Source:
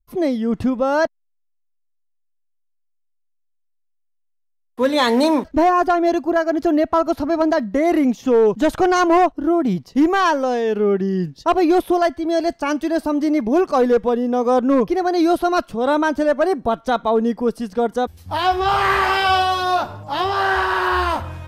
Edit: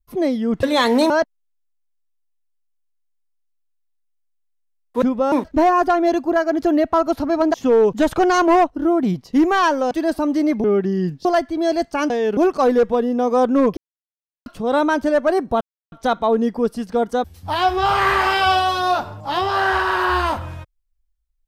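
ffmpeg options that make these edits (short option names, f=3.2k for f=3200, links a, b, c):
-filter_complex "[0:a]asplit=14[a][b][c][d][e][f][g][h][i][j][k][l][m][n];[a]atrim=end=0.632[o];[b]atrim=start=4.848:end=5.322[p];[c]atrim=start=0.928:end=4.852[q];[d]atrim=start=0.628:end=0.932[r];[e]atrim=start=5.318:end=7.542[s];[f]atrim=start=8.158:end=10.532[t];[g]atrim=start=12.778:end=13.512[u];[h]atrim=start=10.798:end=11.412[v];[i]atrim=start=11.928:end=12.782[w];[j]atrim=start=10.528:end=10.802[x];[k]atrim=start=13.508:end=14.91,asetpts=PTS-STARTPTS,afade=t=out:st=1.398:d=0.004:c=hsin[y];[l]atrim=start=14.91:end=15.6,asetpts=PTS-STARTPTS,volume=0[z];[m]atrim=start=15.6:end=16.75,asetpts=PTS-STARTPTS,afade=t=in:d=0.004:c=hsin,afade=t=out:st=1.146:d=0.004:c=hsin,apad=pad_dur=0.31[aa];[n]atrim=start=16.75,asetpts=PTS-STARTPTS,afade=t=in:d=0.004:c=hsin[ab];[o][p]acrossfade=d=0.004:c1=hsin:c2=hsin[ac];[ac][q]acrossfade=d=0.004:c1=hsin:c2=hsin[ad];[ad][r]acrossfade=d=0.004:c1=hsin:c2=hsin[ae];[ae][s]acrossfade=d=0.004:c1=hsin:c2=hsin[af];[af][t]acrossfade=d=0.004:c1=hsin:c2=hsin[ag];[ag][u]acrossfade=d=0.004:c1=hsin:c2=hsin[ah];[ah][v]acrossfade=d=0.004:c1=hsin:c2=hsin[ai];[ai][w]acrossfade=d=0.004:c1=hsin:c2=hsin[aj];[aj][x]acrossfade=d=0.004:c1=hsin:c2=hsin[ak];[y][z][aa][ab]concat=n=4:v=0:a=1[al];[ak][al]acrossfade=d=0.004:c1=hsin:c2=hsin"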